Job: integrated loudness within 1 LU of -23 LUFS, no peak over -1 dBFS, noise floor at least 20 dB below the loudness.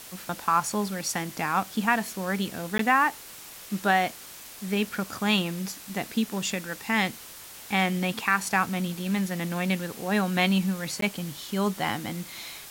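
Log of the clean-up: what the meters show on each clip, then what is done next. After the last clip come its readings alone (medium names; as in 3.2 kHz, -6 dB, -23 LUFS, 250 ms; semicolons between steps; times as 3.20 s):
dropouts 2; longest dropout 13 ms; noise floor -44 dBFS; noise floor target -47 dBFS; loudness -27.0 LUFS; peak level -9.0 dBFS; loudness target -23.0 LUFS
-> interpolate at 2.78/11.01 s, 13 ms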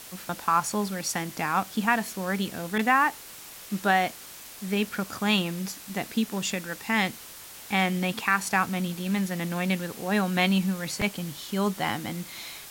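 dropouts 0; noise floor -44 dBFS; noise floor target -47 dBFS
-> noise reduction 6 dB, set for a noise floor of -44 dBFS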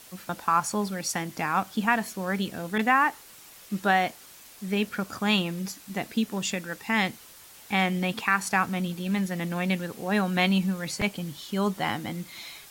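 noise floor -50 dBFS; loudness -27.5 LUFS; peak level -9.0 dBFS; loudness target -23.0 LUFS
-> trim +4.5 dB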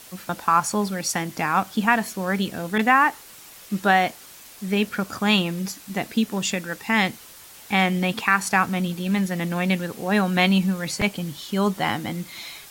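loudness -23.0 LUFS; peak level -4.5 dBFS; noise floor -45 dBFS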